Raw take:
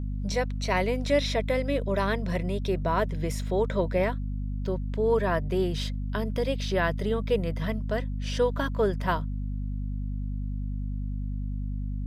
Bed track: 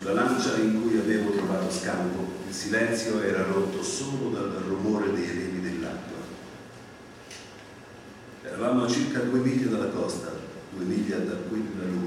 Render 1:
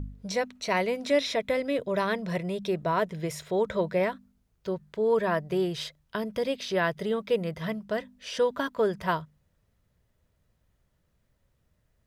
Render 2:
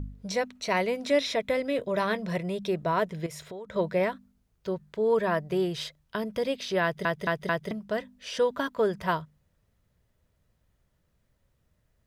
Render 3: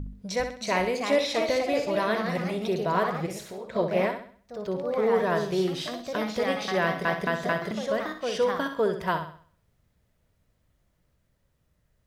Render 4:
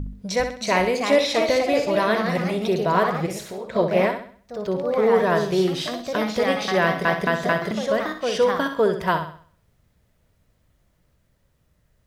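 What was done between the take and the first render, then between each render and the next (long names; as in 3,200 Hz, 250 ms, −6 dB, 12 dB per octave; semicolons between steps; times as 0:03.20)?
hum removal 50 Hz, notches 5
0:01.68–0:02.28: double-tracking delay 19 ms −12.5 dB; 0:03.26–0:03.76: downward compressor 8 to 1, threshold −37 dBFS; 0:06.83: stutter in place 0.22 s, 4 plays
flutter between parallel walls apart 11.1 metres, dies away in 0.48 s; delay with pitch and tempo change per echo 398 ms, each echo +2 semitones, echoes 2, each echo −6 dB
level +5.5 dB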